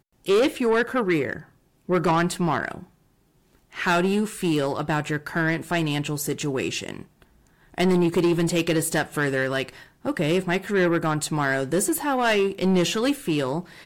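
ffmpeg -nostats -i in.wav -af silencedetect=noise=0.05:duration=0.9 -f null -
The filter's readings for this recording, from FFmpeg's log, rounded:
silence_start: 2.77
silence_end: 3.79 | silence_duration: 1.02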